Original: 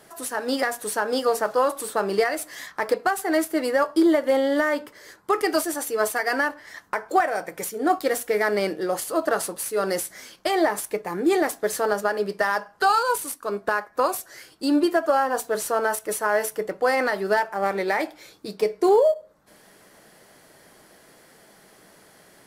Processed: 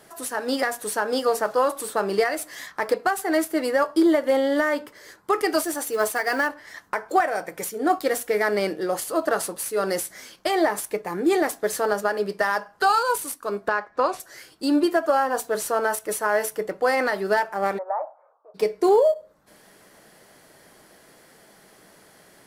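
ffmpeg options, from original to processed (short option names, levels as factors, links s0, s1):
-filter_complex "[0:a]asettb=1/sr,asplit=3[s0][s1][s2];[s0]atrim=end=5.654[s3];[s1]atrim=start=5.65:end=6.47,asetpts=PTS-STARTPTS,afade=t=in:d=0.004:c=qsin,afade=t=out:st=0.816:d=0.004:c=qsin,acrusher=bits=6:mode=log:mix=0:aa=0.000001[s4];[s2]atrim=start=6.466[s5];[s3][s4]acrossfade=d=0.004:c1=hsin:c2=qsin[s6];[s6][s5]acrossfade=d=0.004:c1=qsin:c2=hsin,asettb=1/sr,asplit=3[s7][s8][s9];[s7]atrim=end=13.684[s10];[s8]atrim=start=13.68:end=14.2,asetpts=PTS-STARTPTS,afade=t=in:d=0.004:c=qsin,afade=t=out:st=0.516:d=0.004:c=qsin,lowpass=4800[s11];[s9]atrim=start=14.196[s12];[s10][s11]acrossfade=d=0.004:c1=hsin:c2=qsin[s13];[s13][s12]acrossfade=d=0.004:c1=qsin:c2=hsin,asplit=3[s14][s15][s16];[s14]afade=t=out:st=17.77:d=0.02[s17];[s15]asuperpass=centerf=830:order=8:qfactor=1.2,afade=t=in:st=17.77:d=0.02,afade=t=out:st=18.54:d=0.02[s18];[s16]afade=t=in:st=18.54:d=0.02[s19];[s17][s18][s19]amix=inputs=3:normalize=0"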